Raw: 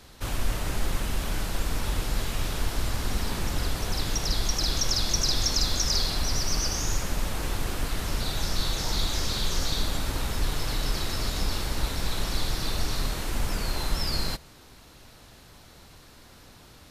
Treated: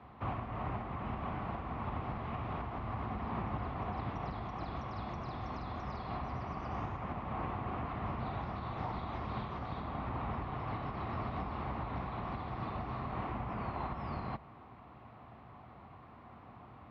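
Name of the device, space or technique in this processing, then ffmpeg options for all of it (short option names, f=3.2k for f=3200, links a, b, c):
bass amplifier: -af "acompressor=threshold=-27dB:ratio=6,highpass=f=62:w=0.5412,highpass=f=62:w=1.3066,equalizer=f=120:t=q:w=4:g=5,equalizer=f=220:t=q:w=4:g=5,equalizer=f=500:t=q:w=4:g=-3,equalizer=f=740:t=q:w=4:g=9,equalizer=f=1.1k:t=q:w=4:g=10,equalizer=f=1.6k:t=q:w=4:g=-7,lowpass=f=2.2k:w=0.5412,lowpass=f=2.2k:w=1.3066,volume=-3.5dB"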